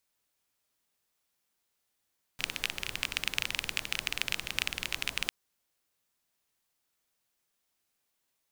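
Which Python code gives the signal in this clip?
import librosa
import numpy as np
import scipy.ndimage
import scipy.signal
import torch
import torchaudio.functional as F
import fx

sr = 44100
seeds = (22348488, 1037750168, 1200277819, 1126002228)

y = fx.rain(sr, seeds[0], length_s=2.9, drops_per_s=20.0, hz=2600.0, bed_db=-10)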